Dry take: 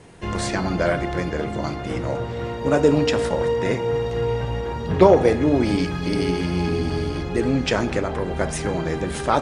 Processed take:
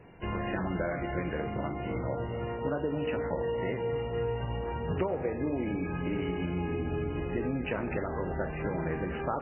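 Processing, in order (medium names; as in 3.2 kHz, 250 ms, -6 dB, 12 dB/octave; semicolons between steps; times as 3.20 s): compression 8:1, threshold -21 dBFS, peak gain reduction 13.5 dB; on a send: thinning echo 239 ms, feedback 47%, high-pass 180 Hz, level -14.5 dB; on the sum: trim -6 dB; MP3 8 kbps 8 kHz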